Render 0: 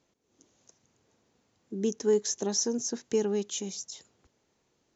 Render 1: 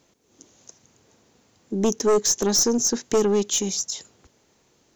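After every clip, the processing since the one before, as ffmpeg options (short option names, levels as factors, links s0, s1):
-af "highshelf=f=6300:g=5.5,aeval=exprs='0.237*(cos(1*acos(clip(val(0)/0.237,-1,1)))-cos(1*PI/2))+0.0335*(cos(4*acos(clip(val(0)/0.237,-1,1)))-cos(4*PI/2))+0.106*(cos(5*acos(clip(val(0)/0.237,-1,1)))-cos(5*PI/2))':c=same"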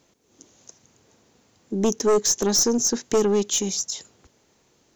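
-af anull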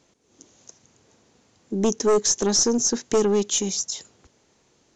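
-af "aresample=22050,aresample=44100"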